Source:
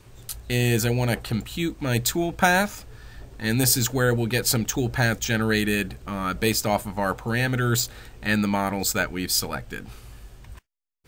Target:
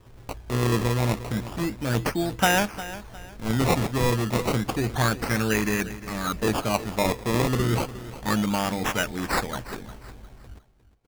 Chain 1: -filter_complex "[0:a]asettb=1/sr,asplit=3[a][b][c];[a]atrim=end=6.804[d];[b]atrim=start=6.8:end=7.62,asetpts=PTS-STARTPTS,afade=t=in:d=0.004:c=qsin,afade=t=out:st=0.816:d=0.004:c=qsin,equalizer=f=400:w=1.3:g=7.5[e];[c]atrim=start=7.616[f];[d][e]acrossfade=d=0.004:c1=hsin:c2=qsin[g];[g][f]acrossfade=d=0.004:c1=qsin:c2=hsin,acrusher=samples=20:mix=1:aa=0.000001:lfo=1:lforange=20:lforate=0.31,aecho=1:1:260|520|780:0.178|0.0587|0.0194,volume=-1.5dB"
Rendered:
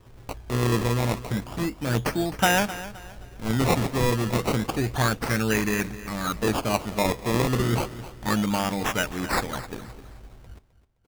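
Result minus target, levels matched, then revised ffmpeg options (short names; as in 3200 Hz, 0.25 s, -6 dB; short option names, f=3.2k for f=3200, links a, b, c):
echo 96 ms early
-filter_complex "[0:a]asettb=1/sr,asplit=3[a][b][c];[a]atrim=end=6.804[d];[b]atrim=start=6.8:end=7.62,asetpts=PTS-STARTPTS,afade=t=in:d=0.004:c=qsin,afade=t=out:st=0.816:d=0.004:c=qsin,equalizer=f=400:w=1.3:g=7.5[e];[c]atrim=start=7.616[f];[d][e]acrossfade=d=0.004:c1=hsin:c2=qsin[g];[g][f]acrossfade=d=0.004:c1=qsin:c2=hsin,acrusher=samples=20:mix=1:aa=0.000001:lfo=1:lforange=20:lforate=0.31,aecho=1:1:356|712|1068:0.178|0.0587|0.0194,volume=-1.5dB"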